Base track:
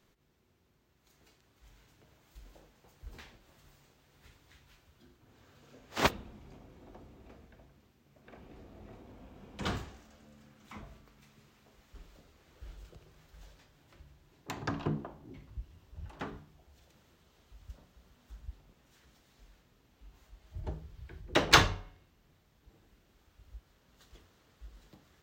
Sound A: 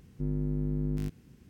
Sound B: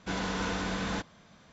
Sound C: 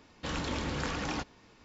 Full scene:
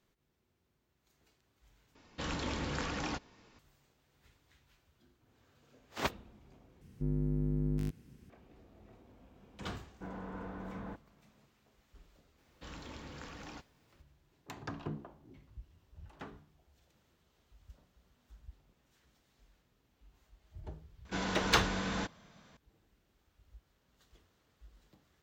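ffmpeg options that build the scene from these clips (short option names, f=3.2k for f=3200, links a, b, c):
-filter_complex "[3:a]asplit=2[a][b];[2:a]asplit=2[c][d];[0:a]volume=-7dB[e];[c]lowpass=1.1k[f];[b]acrusher=bits=10:mix=0:aa=0.000001[g];[e]asplit=3[h][i][j];[h]atrim=end=1.954[k];[a]atrim=end=1.64,asetpts=PTS-STARTPTS,volume=-3dB[l];[i]atrim=start=3.586:end=6.814[m];[1:a]atrim=end=1.49,asetpts=PTS-STARTPTS,volume=-2dB[n];[j]atrim=start=8.296[o];[f]atrim=end=1.52,asetpts=PTS-STARTPTS,volume=-10dB,afade=t=in:d=0.004:c=hsin,afade=t=out:st=1.516:d=0.004:c=hsin,adelay=438354S[p];[g]atrim=end=1.64,asetpts=PTS-STARTPTS,volume=-14dB,afade=t=in:d=0.004:c=hsin,afade=t=out:st=1.636:d=0.004:c=hsin,adelay=12380[q];[d]atrim=end=1.52,asetpts=PTS-STARTPTS,volume=-3dB,afade=t=in:d=0.004:c=hsin,afade=t=out:st=1.516:d=0.004:c=hsin,adelay=21050[r];[k][l]acrossfade=d=0.004:c1=hsin:c2=hsin[s];[s][m]acrossfade=d=0.004:c1=hsin:c2=hsin[t];[t][n]acrossfade=d=0.004:c1=hsin:c2=hsin[u];[u][o]acrossfade=d=0.004:c1=hsin:c2=hsin[v];[v][p][q][r]amix=inputs=4:normalize=0"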